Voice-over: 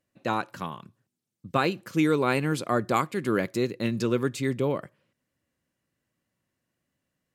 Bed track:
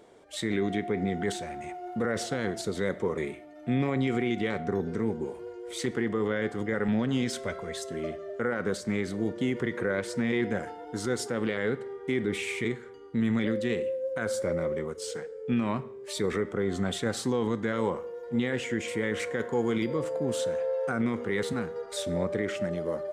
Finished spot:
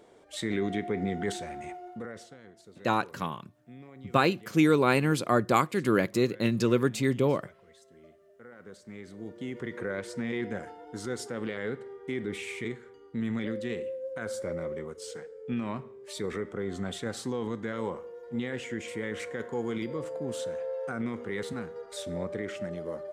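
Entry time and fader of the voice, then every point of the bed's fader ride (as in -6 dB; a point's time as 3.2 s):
2.60 s, +1.0 dB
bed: 1.72 s -1.5 dB
2.42 s -21.5 dB
8.4 s -21.5 dB
9.78 s -5 dB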